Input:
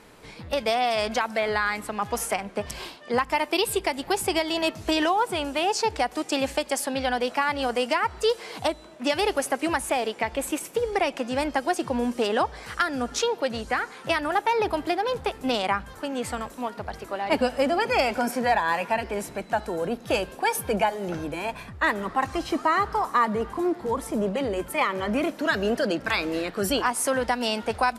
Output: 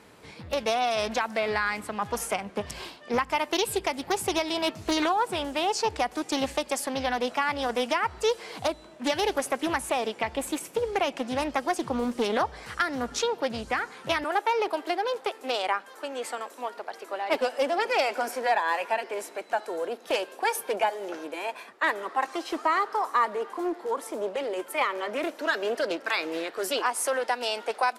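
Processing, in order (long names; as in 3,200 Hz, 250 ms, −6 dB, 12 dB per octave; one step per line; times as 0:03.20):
high-pass filter 55 Hz 24 dB per octave, from 0:14.24 340 Hz
highs frequency-modulated by the lows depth 0.32 ms
level −2 dB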